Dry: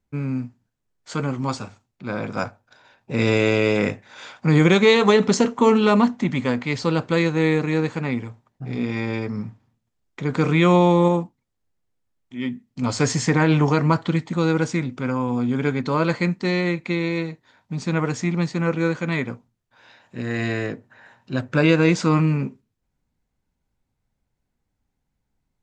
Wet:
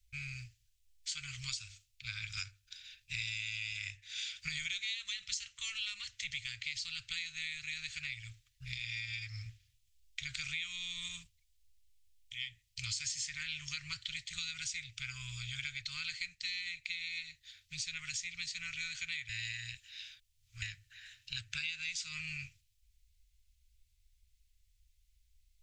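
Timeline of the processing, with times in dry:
19.29–20.62 s: reverse
whole clip: inverse Chebyshev band-stop 230–790 Hz, stop band 70 dB; compression 6:1, threshold -46 dBFS; trim +8.5 dB

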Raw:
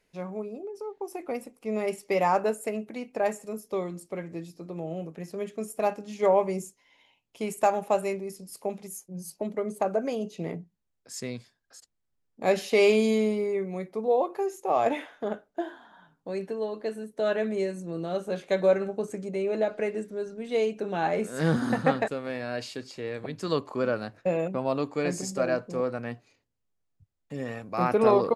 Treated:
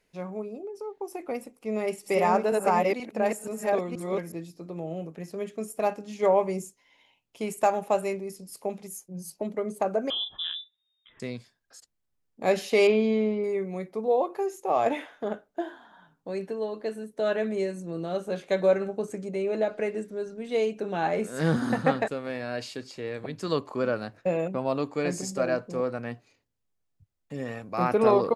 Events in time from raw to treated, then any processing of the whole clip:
1.56–4.32 s: chunks repeated in reverse 479 ms, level 0 dB
10.10–11.20 s: frequency inversion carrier 3.7 kHz
12.87–13.44 s: distance through air 250 m

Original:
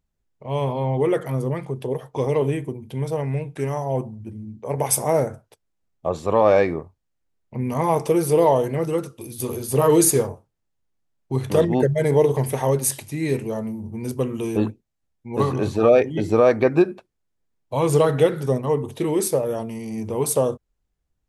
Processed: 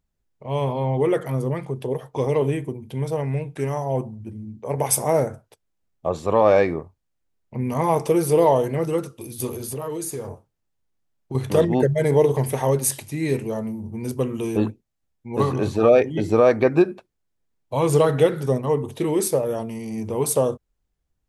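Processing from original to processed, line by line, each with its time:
9.48–11.35 s: compression, threshold -27 dBFS

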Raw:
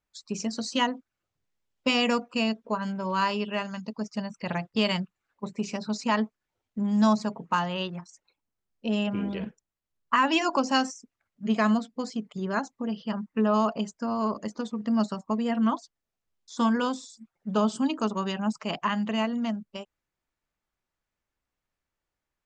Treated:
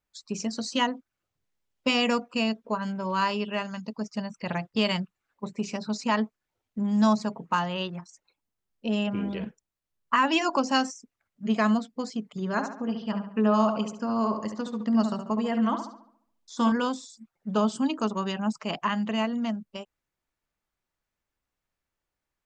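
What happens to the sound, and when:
12.26–16.72 s: filtered feedback delay 70 ms, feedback 48%, low-pass 2.9 kHz, level -7 dB

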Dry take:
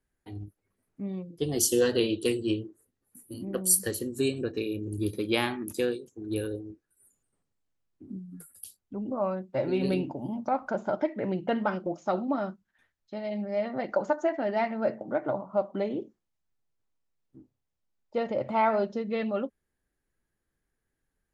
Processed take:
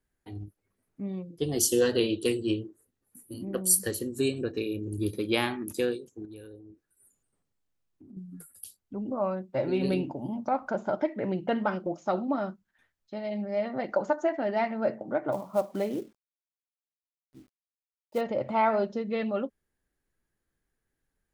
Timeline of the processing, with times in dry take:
6.25–8.17 s: compression 2.5:1, threshold -50 dBFS
15.32–18.21 s: companded quantiser 6-bit

